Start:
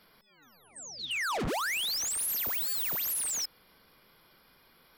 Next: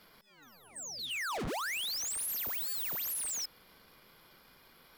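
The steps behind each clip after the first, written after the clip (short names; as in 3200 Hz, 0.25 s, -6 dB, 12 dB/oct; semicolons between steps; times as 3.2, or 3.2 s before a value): sample leveller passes 2; gain -5 dB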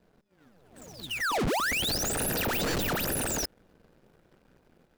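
median filter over 41 samples; AGC gain up to 3 dB; gain +6 dB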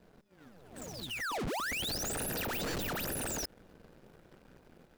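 limiter -38 dBFS, peak gain reduction 11.5 dB; gain +3.5 dB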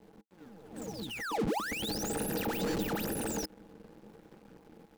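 sample gate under -60 dBFS; small resonant body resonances 210/310/450/820 Hz, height 12 dB, ringing for 65 ms; gain -2 dB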